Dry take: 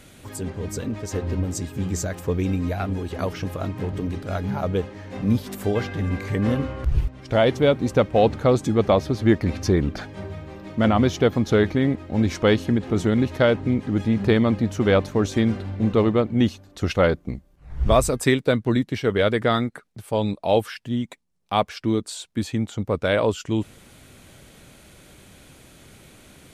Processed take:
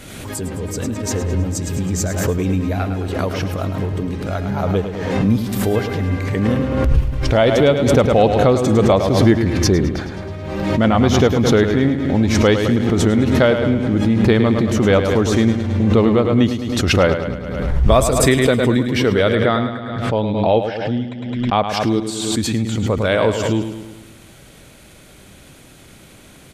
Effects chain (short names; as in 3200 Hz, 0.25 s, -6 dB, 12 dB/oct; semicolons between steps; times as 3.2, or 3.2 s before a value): 19.35–21.69 air absorption 180 m; feedback echo 0.106 s, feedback 56%, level -8.5 dB; backwards sustainer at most 37 dB/s; gain +3.5 dB